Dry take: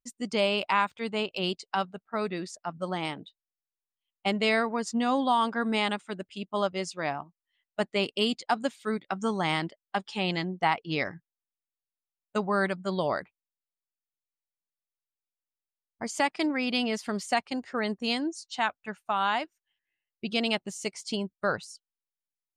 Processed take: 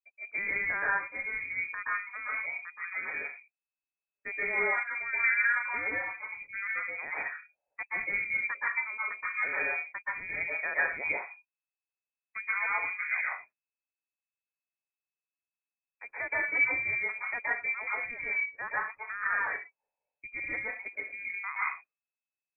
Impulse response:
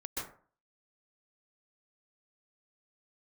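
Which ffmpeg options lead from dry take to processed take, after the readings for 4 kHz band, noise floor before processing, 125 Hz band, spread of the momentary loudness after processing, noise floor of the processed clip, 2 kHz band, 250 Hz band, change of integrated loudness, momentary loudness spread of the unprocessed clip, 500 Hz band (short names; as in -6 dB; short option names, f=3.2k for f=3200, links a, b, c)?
under -40 dB, under -85 dBFS, under -15 dB, 11 LU, under -85 dBFS, +5.5 dB, -24.0 dB, -1.5 dB, 9 LU, -13.5 dB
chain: -filter_complex "[1:a]atrim=start_sample=2205,afade=t=out:st=0.3:d=0.01,atrim=end_sample=13671[a];[0:a][a]afir=irnorm=-1:irlink=0,aeval=exprs='0.282*(cos(1*acos(clip(val(0)/0.282,-1,1)))-cos(1*PI/2))+0.00562*(cos(7*acos(clip(val(0)/0.282,-1,1)))-cos(7*PI/2))':c=same,lowpass=f=2.2k:t=q:w=0.5098,lowpass=f=2.2k:t=q:w=0.6013,lowpass=f=2.2k:t=q:w=0.9,lowpass=f=2.2k:t=q:w=2.563,afreqshift=-2600,volume=-4.5dB"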